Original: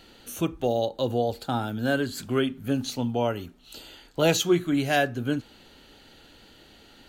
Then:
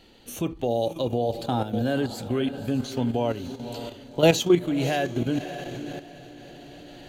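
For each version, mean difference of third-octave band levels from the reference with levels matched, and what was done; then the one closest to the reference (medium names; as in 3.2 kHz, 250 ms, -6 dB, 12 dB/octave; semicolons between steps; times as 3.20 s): 5.5 dB: peaking EQ 1.4 kHz -7.5 dB 0.54 oct; on a send: echo that smears into a reverb 557 ms, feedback 50%, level -12.5 dB; on the sum: level held to a coarse grid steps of 10 dB; treble shelf 4.8 kHz -6 dB; trim +6 dB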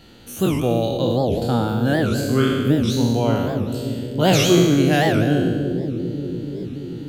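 9.0 dB: spectral sustain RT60 1.49 s; peaking EQ 120 Hz +9.5 dB 2.4 oct; on a send: bucket-brigade echo 290 ms, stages 1024, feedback 81%, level -7.5 dB; on the sum: warped record 78 rpm, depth 250 cents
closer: first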